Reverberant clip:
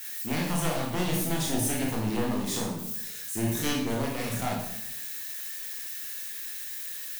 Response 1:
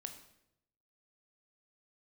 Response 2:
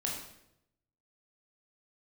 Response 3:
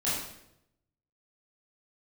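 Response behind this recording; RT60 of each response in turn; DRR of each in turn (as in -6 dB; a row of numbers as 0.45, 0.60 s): 2; 0.80, 0.80, 0.80 s; 6.0, -2.5, -10.0 dB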